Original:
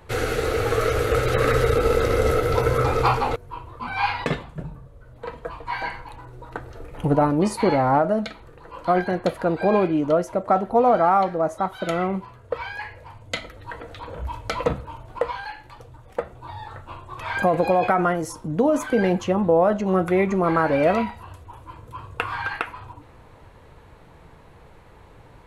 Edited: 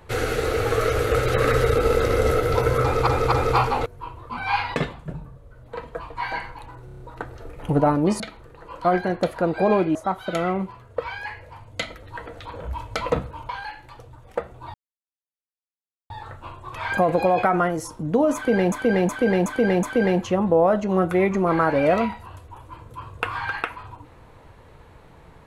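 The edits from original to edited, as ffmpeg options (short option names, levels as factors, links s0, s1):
-filter_complex "[0:a]asplit=16[s0][s1][s2][s3][s4][s5][s6][s7][s8][s9][s10][s11][s12][s13][s14][s15];[s0]atrim=end=3.072[s16];[s1]atrim=start=2.818:end=3.072[s17];[s2]atrim=start=2.818:end=6.382[s18];[s3]atrim=start=6.348:end=6.382[s19];[s4]atrim=start=6.348:end=6.382[s20];[s5]atrim=start=6.348:end=6.382[s21];[s6]atrim=start=6.348:end=6.382[s22];[s7]atrim=start=6.348:end=7.552[s23];[s8]atrim=start=8.228:end=9.982[s24];[s9]atrim=start=11.488:end=15.032[s25];[s10]atrim=start=15.298:end=16.55,asetpts=PTS-STARTPTS,afade=t=out:st=1.248:d=0.004:c=hsin,apad=pad_dur=1.36[s26];[s11]atrim=start=16.55:end=19.172,asetpts=PTS-STARTPTS,afade=t=in:d=0.004:c=hsin[s27];[s12]atrim=start=18.798:end=19.172[s28];[s13]atrim=start=18.798:end=19.172[s29];[s14]atrim=start=18.798:end=19.172[s30];[s15]atrim=start=18.798[s31];[s16][s17]acrossfade=d=0.004:c1=hsin:c2=hsin[s32];[s32][s18]acrossfade=d=0.004:c1=hsin:c2=hsin[s33];[s33][s19]acrossfade=d=0.004:c1=hsin:c2=hsin[s34];[s34][s20]acrossfade=d=0.004:c1=hsin:c2=hsin[s35];[s35][s21]acrossfade=d=0.004:c1=hsin:c2=hsin[s36];[s36][s22]acrossfade=d=0.004:c1=hsin:c2=hsin[s37];[s37][s23]acrossfade=d=0.004:c1=hsin:c2=hsin[s38];[s38][s24]acrossfade=d=0.004:c1=hsin:c2=hsin[s39];[s39][s25]acrossfade=d=0.004:c1=hsin:c2=hsin[s40];[s26][s27]concat=n=2:v=0:a=1[s41];[s40][s41]acrossfade=d=0.004:c1=hsin:c2=hsin[s42];[s42][s28]acrossfade=d=0.004:c1=hsin:c2=hsin[s43];[s43][s29]acrossfade=d=0.004:c1=hsin:c2=hsin[s44];[s44][s30]acrossfade=d=0.004:c1=hsin:c2=hsin[s45];[s45][s31]acrossfade=d=0.004:c1=hsin:c2=hsin"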